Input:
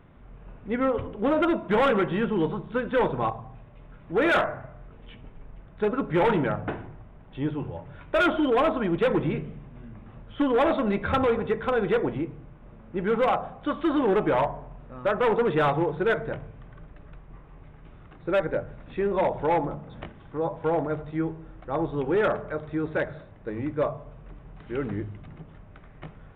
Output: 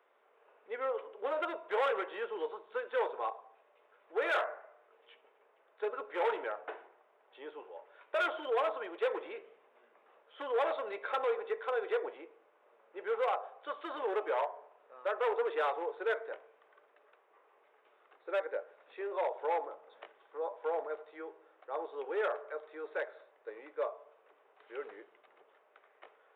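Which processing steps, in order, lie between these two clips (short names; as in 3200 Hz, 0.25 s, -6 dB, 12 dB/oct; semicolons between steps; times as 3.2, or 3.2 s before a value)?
Chebyshev high-pass 430 Hz, order 4; gain -8.5 dB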